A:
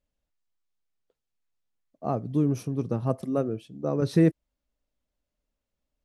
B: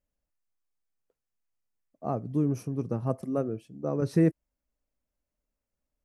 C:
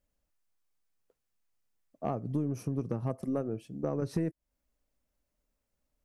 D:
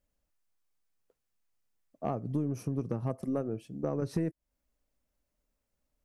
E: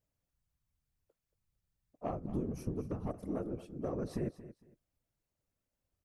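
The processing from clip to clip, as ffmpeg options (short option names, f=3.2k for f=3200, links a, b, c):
-af "equalizer=f=3.6k:w=2.3:g=-10,volume=-2.5dB"
-af "acompressor=threshold=-33dB:ratio=6,aeval=exprs='0.0596*(cos(1*acos(clip(val(0)/0.0596,-1,1)))-cos(1*PI/2))+0.00211*(cos(4*acos(clip(val(0)/0.0596,-1,1)))-cos(4*PI/2))':c=same,volume=4dB"
-af anull
-af "afftfilt=real='hypot(re,im)*cos(2*PI*random(0))':imag='hypot(re,im)*sin(2*PI*random(1))':win_size=512:overlap=0.75,aecho=1:1:228|456:0.178|0.0391,volume=1dB"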